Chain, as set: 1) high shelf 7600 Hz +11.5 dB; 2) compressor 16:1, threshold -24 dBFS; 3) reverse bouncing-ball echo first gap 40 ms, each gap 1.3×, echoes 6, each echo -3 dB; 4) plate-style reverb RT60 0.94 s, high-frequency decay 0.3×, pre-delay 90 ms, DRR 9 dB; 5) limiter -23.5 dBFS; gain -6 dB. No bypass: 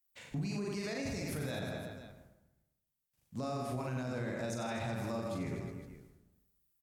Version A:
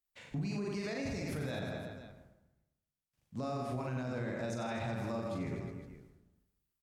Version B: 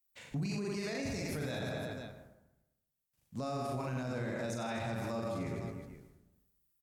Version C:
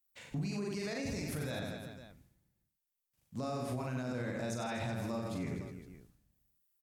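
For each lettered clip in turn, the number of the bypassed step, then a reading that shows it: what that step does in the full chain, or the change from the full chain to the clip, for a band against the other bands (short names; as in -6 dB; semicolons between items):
1, 8 kHz band -5.0 dB; 2, mean gain reduction 4.5 dB; 4, momentary loudness spread change +2 LU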